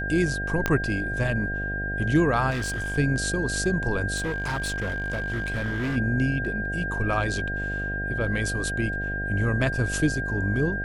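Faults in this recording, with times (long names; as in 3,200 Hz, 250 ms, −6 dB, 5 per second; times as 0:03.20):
mains buzz 50 Hz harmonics 15 −32 dBFS
whistle 1,600 Hz −29 dBFS
0:00.66: click −9 dBFS
0:02.50–0:02.98: clipping −25 dBFS
0:04.16–0:05.97: clipping −24 dBFS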